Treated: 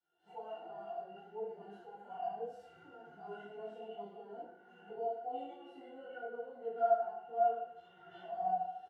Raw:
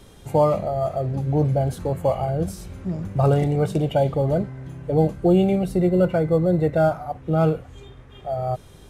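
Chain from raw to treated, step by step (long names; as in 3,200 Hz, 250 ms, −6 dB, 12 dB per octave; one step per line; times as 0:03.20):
camcorder AGC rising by 26 dB per second
high-pass filter 780 Hz 12 dB per octave
noise gate −49 dBFS, range −15 dB
harmonic and percussive parts rebalanced percussive +9 dB
phase-vocoder pitch shift with formants kept +6.5 semitones
brickwall limiter −18.5 dBFS, peak gain reduction 9 dB
harmonic and percussive parts rebalanced percussive −17 dB
resonances in every octave F, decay 0.11 s
repeating echo 74 ms, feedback 58%, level −13 dB
feedback delay network reverb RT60 0.63 s, low-frequency decay 0.75×, high-frequency decay 0.7×, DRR −5.5 dB
micro pitch shift up and down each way 30 cents
level −3 dB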